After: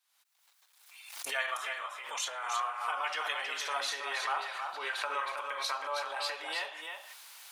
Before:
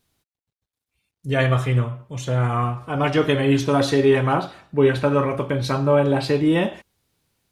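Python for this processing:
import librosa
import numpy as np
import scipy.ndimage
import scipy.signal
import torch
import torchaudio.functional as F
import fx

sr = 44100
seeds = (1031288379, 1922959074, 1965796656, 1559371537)

y = fx.recorder_agc(x, sr, target_db=-12.5, rise_db_per_s=63.0, max_gain_db=30)
y = scipy.signal.sosfilt(scipy.signal.butter(4, 860.0, 'highpass', fs=sr, output='sos'), y)
y = y + 10.0 ** (-6.0 / 20.0) * np.pad(y, (int(319 * sr / 1000.0), 0))[:len(y)]
y = fx.pre_swell(y, sr, db_per_s=62.0)
y = y * librosa.db_to_amplitude(-8.5)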